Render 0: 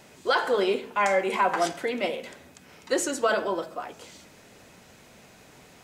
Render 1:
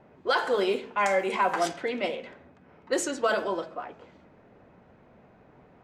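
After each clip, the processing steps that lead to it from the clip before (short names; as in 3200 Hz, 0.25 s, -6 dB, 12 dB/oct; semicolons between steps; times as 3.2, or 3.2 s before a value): low-pass opened by the level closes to 1100 Hz, open at -20 dBFS; gain -1.5 dB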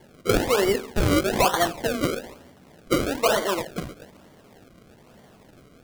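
decimation with a swept rate 34×, swing 100% 1.1 Hz; gain +4.5 dB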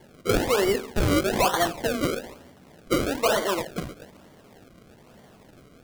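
soft clip -13 dBFS, distortion -20 dB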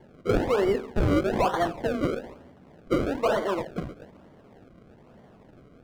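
LPF 1200 Hz 6 dB/oct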